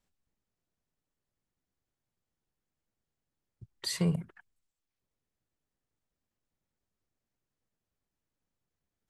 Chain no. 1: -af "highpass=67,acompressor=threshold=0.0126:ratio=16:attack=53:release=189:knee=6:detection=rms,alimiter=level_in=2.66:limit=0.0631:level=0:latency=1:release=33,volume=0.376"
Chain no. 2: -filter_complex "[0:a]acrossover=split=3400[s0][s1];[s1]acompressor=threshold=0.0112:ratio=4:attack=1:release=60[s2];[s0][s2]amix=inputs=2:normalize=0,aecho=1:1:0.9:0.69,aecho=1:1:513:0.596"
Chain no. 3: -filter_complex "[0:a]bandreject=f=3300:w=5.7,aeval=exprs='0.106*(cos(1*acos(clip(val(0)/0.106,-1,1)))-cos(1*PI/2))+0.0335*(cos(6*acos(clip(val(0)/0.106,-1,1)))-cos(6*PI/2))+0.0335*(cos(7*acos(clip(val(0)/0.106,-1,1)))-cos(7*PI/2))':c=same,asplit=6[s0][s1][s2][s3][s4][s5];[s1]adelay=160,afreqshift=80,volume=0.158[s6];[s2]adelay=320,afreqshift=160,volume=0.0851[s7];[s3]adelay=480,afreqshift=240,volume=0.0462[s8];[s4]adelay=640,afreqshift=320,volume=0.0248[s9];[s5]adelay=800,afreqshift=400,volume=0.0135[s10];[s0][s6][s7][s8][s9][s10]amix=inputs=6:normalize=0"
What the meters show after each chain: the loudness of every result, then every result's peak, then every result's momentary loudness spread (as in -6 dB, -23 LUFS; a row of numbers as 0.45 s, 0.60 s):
-43.5 LUFS, -31.5 LUFS, -31.5 LUFS; -32.5 dBFS, -16.5 dBFS, -15.5 dBFS; 18 LU, 13 LU, 18 LU